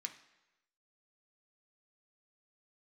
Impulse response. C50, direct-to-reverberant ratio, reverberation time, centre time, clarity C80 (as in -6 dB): 11.5 dB, 4.0 dB, 1.0 s, 11 ms, 14.0 dB